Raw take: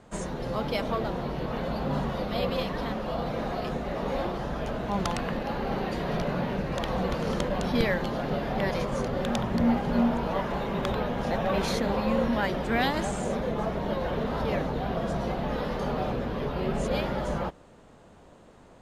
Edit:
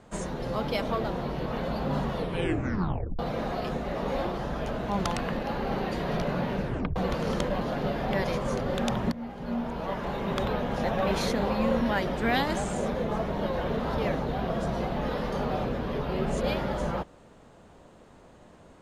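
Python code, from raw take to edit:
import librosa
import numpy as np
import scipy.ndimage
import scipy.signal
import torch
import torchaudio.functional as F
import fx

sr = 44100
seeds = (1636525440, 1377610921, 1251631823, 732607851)

y = fx.edit(x, sr, fx.tape_stop(start_s=2.12, length_s=1.07),
    fx.tape_stop(start_s=6.64, length_s=0.32),
    fx.cut(start_s=7.61, length_s=0.47),
    fx.fade_in_from(start_s=9.59, length_s=1.24, floor_db=-18.5), tone=tone)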